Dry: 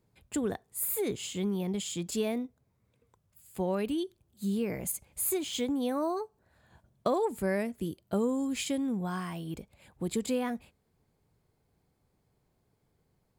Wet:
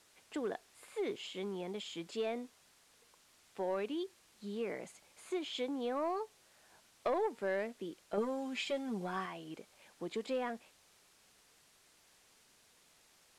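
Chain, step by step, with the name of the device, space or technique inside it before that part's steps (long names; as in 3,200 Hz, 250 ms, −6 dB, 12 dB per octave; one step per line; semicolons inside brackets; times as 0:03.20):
tape answering machine (band-pass filter 390–3,400 Hz; soft clipping −24.5 dBFS, distortion −19 dB; tape wow and flutter; white noise bed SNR 22 dB)
Bessel low-pass filter 9,000 Hz, order 4
0:08.17–0:09.26: comb filter 5.1 ms, depth 91%
level −1.5 dB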